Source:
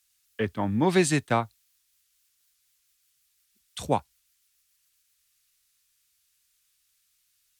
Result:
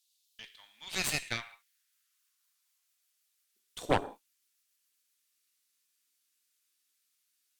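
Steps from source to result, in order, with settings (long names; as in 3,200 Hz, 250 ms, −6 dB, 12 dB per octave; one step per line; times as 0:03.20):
high-pass filter sweep 3,700 Hz → 280 Hz, 0:00.61–0:04.22
reverb whose tail is shaped and stops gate 210 ms falling, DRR 7.5 dB
harmonic generator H 6 −10 dB, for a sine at −7 dBFS
level −8 dB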